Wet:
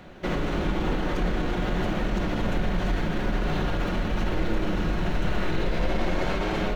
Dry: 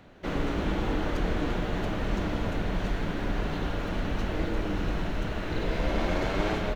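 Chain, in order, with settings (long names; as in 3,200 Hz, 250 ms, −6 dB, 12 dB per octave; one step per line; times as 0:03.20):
brickwall limiter −25.5 dBFS, peak gain reduction 11 dB
convolution reverb RT60 1.1 s, pre-delay 5 ms, DRR 7.5 dB
level +6.5 dB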